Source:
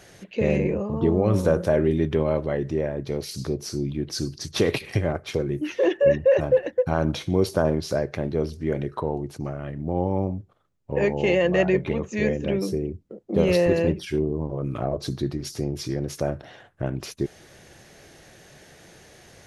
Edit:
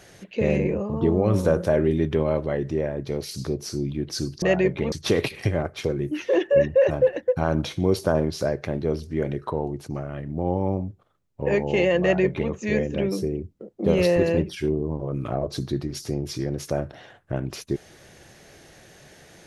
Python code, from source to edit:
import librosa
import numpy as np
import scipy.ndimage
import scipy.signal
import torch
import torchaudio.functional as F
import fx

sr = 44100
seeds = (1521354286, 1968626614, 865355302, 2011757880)

y = fx.edit(x, sr, fx.duplicate(start_s=11.51, length_s=0.5, to_s=4.42), tone=tone)